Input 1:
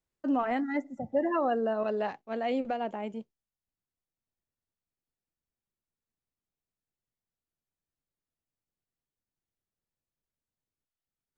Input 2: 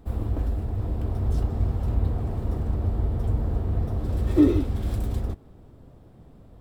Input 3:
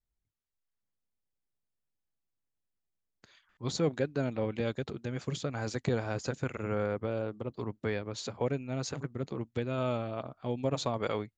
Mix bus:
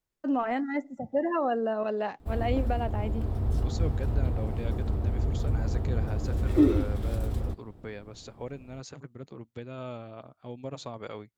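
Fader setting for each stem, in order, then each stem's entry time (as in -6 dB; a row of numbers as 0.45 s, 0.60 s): +0.5 dB, -3.0 dB, -7.0 dB; 0.00 s, 2.20 s, 0.00 s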